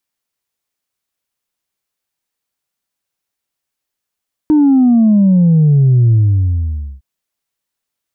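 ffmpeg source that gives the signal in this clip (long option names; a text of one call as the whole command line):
ffmpeg -f lavfi -i "aevalsrc='0.473*clip((2.51-t)/0.89,0,1)*tanh(1.06*sin(2*PI*310*2.51/log(65/310)*(exp(log(65/310)*t/2.51)-1)))/tanh(1.06)':duration=2.51:sample_rate=44100" out.wav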